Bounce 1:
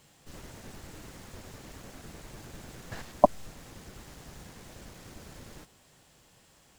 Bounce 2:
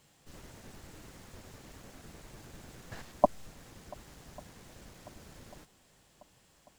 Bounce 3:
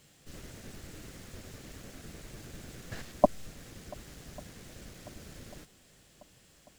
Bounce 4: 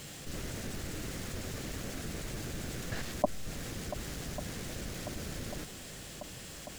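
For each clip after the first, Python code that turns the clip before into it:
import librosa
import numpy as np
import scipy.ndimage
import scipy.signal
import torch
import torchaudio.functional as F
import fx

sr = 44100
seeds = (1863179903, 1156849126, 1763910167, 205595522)

y1 = fx.echo_swing(x, sr, ms=1144, ratio=1.5, feedback_pct=52, wet_db=-24)
y1 = y1 * 10.0 ** (-4.5 / 20.0)
y2 = fx.peak_eq(y1, sr, hz=920.0, db=-8.0, octaves=0.76)
y2 = y2 * 10.0 ** (4.5 / 20.0)
y3 = fx.env_flatten(y2, sr, amount_pct=50)
y3 = y3 * 10.0 ** (-7.0 / 20.0)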